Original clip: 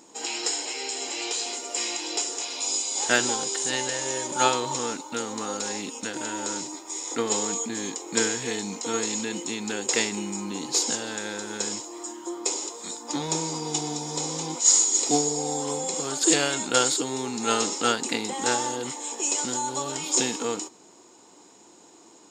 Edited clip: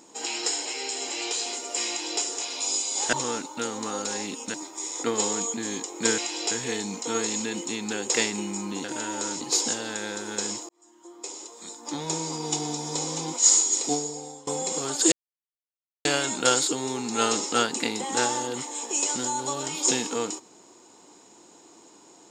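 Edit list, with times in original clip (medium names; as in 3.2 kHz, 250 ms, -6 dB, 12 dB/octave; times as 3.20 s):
1.88–2.21 s: copy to 8.30 s
3.13–4.68 s: delete
6.09–6.66 s: move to 10.63 s
11.91–13.75 s: fade in
14.78–15.69 s: fade out, to -22.5 dB
16.34 s: insert silence 0.93 s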